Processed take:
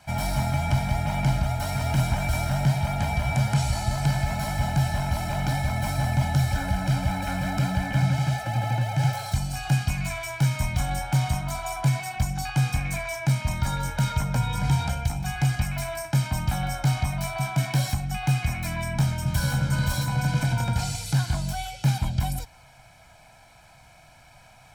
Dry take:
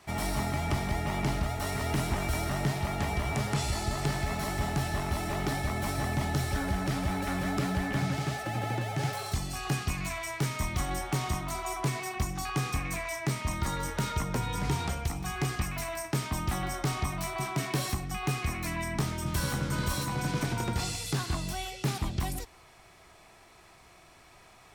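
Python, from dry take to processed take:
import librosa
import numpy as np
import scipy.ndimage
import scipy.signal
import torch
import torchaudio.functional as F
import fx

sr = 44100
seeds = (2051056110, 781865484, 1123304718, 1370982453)

y = fx.peak_eq(x, sr, hz=130.0, db=7.0, octaves=0.34)
y = y + 0.92 * np.pad(y, (int(1.3 * sr / 1000.0), 0))[:len(y)]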